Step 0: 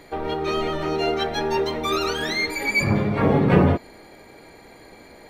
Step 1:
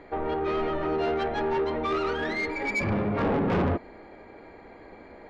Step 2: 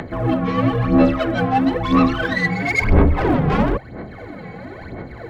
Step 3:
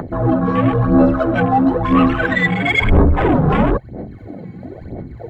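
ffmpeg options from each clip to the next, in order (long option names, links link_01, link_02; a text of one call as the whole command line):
ffmpeg -i in.wav -af "lowpass=1900,equalizer=frequency=140:width=3.3:gain=-8.5,asoftclip=type=tanh:threshold=-21.5dB" out.wav
ffmpeg -i in.wav -af "aphaser=in_gain=1:out_gain=1:delay=3.4:decay=0.68:speed=1:type=sinusoidal,afreqshift=-130,acompressor=mode=upward:threshold=-32dB:ratio=2.5,volume=6dB" out.wav
ffmpeg -i in.wav -filter_complex "[0:a]afwtdn=0.0501,highshelf=frequency=5900:gain=8.5,asplit=2[link_01][link_02];[link_02]alimiter=limit=-11dB:level=0:latency=1:release=26,volume=0dB[link_03];[link_01][link_03]amix=inputs=2:normalize=0,volume=-2dB" out.wav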